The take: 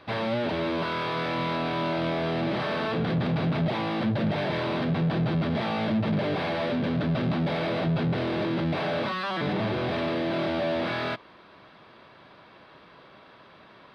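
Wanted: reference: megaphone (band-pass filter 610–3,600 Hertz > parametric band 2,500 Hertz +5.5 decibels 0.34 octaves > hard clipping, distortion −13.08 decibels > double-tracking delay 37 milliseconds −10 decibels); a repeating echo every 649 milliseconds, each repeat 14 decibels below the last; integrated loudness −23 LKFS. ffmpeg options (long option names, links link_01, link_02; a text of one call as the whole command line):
ffmpeg -i in.wav -filter_complex "[0:a]highpass=610,lowpass=3600,equalizer=frequency=2500:width_type=o:width=0.34:gain=5.5,aecho=1:1:649|1298:0.2|0.0399,asoftclip=type=hard:threshold=-29dB,asplit=2[link_01][link_02];[link_02]adelay=37,volume=-10dB[link_03];[link_01][link_03]amix=inputs=2:normalize=0,volume=10dB" out.wav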